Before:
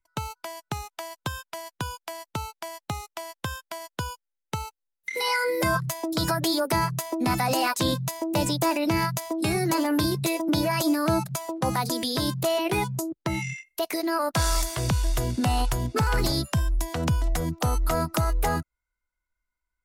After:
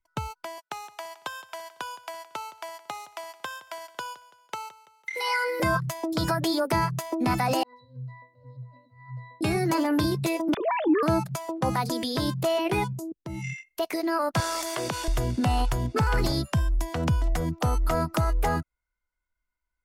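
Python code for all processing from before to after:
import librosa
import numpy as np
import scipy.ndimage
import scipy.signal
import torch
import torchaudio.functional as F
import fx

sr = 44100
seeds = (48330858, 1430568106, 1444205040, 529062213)

y = fx.chain(x, sr, fx.highpass(hz=540.0, slope=12),
    fx.echo_feedback(ms=167, feedback_pct=44, wet_db=-17.0), at=(0.58, 5.6))
y = fx.chain(y, sr, fx.over_compress(threshold_db=-29.0, ratio=-0.5),
    fx.fixed_phaser(hz=1600.0, stages=8),
    fx.octave_resonator(note='B', decay_s=0.37), at=(7.63, 9.41))
y = fx.chain(y, sr, fx.sine_speech(),
    fx.high_shelf(hz=2400.0, db=-7.5),
    fx.transient(attack_db=-2, sustain_db=7), at=(10.54, 11.03))
y = fx.chain(y, sr, fx.peak_eq(hz=1700.0, db=-10.0, octaves=2.4),
    fx.level_steps(step_db=17), at=(12.93, 13.44))
y = fx.chain(y, sr, fx.cheby1_highpass(hz=350.0, order=2),
    fx.env_flatten(amount_pct=70), at=(14.4, 15.08))
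y = fx.high_shelf(y, sr, hz=5200.0, db=-8.0)
y = fx.notch(y, sr, hz=3900.0, q=23.0)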